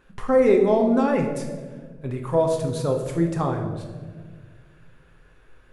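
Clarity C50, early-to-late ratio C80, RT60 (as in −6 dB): 6.0 dB, 8.0 dB, 1.6 s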